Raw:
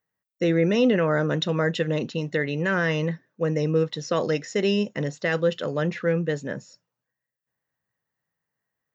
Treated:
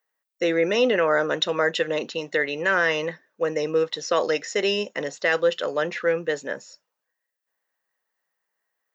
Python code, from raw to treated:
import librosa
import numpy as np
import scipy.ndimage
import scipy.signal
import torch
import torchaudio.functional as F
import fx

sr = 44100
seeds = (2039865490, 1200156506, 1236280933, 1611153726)

y = scipy.signal.sosfilt(scipy.signal.butter(2, 470.0, 'highpass', fs=sr, output='sos'), x)
y = y * 10.0 ** (4.5 / 20.0)